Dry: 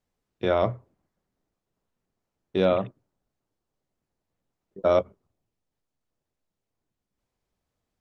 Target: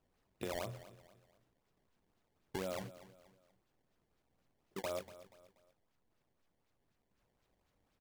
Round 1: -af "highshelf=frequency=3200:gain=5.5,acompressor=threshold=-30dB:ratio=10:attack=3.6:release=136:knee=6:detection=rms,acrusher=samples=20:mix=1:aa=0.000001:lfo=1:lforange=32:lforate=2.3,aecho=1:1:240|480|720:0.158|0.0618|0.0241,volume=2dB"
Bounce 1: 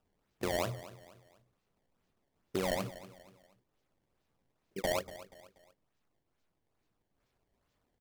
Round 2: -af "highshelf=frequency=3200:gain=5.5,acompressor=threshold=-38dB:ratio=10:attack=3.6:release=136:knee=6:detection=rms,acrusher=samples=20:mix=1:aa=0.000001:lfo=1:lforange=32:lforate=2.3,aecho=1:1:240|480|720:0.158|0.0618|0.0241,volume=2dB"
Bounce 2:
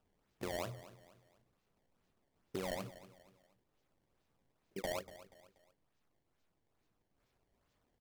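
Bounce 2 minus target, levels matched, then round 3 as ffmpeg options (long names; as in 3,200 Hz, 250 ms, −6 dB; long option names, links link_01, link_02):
sample-and-hold swept by an LFO: distortion +7 dB
-af "highshelf=frequency=3200:gain=5.5,acompressor=threshold=-38dB:ratio=10:attack=3.6:release=136:knee=6:detection=rms,acrusher=samples=20:mix=1:aa=0.000001:lfo=1:lforange=32:lforate=4,aecho=1:1:240|480|720:0.158|0.0618|0.0241,volume=2dB"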